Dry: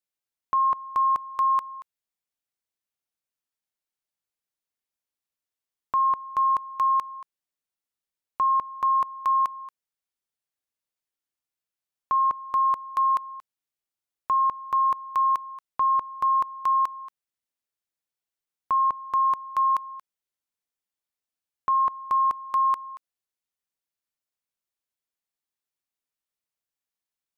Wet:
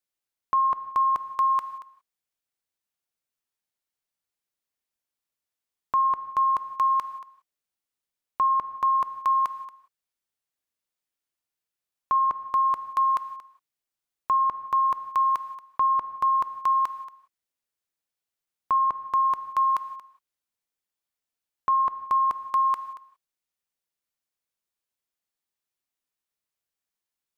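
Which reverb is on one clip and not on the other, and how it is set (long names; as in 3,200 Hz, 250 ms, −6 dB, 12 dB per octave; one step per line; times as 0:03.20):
reverb whose tail is shaped and stops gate 200 ms flat, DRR 12 dB
level +1 dB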